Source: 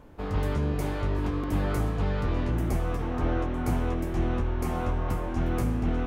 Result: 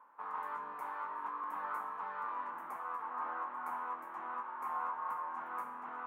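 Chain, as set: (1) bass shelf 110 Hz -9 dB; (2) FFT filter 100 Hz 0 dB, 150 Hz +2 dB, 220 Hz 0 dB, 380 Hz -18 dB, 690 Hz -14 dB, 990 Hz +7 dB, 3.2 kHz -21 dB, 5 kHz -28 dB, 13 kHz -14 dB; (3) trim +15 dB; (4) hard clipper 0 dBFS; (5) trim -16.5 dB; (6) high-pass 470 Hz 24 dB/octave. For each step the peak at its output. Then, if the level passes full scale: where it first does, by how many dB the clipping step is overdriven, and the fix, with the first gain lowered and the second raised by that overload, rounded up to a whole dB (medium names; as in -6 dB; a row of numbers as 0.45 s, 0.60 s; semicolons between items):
-18.0 dBFS, -20.0 dBFS, -5.0 dBFS, -5.0 dBFS, -21.5 dBFS, -27.0 dBFS; nothing clips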